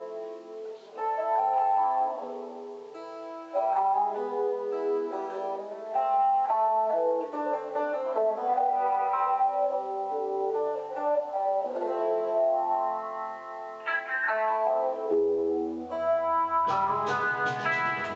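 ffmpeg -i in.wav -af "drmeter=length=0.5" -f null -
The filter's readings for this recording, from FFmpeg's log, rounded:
Channel 1: DR: 7.2
Overall DR: 7.2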